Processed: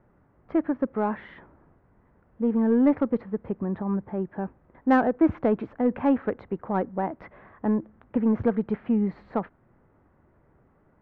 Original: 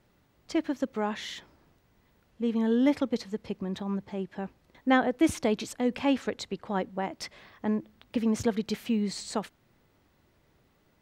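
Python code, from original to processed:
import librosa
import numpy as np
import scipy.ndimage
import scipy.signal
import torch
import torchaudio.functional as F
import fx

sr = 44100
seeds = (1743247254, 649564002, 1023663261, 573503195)

p1 = scipy.signal.sosfilt(scipy.signal.butter(4, 1600.0, 'lowpass', fs=sr, output='sos'), x)
p2 = 10.0 ** (-24.5 / 20.0) * np.tanh(p1 / 10.0 ** (-24.5 / 20.0))
p3 = p1 + (p2 * 10.0 ** (-5.5 / 20.0))
y = p3 * 10.0 ** (1.5 / 20.0)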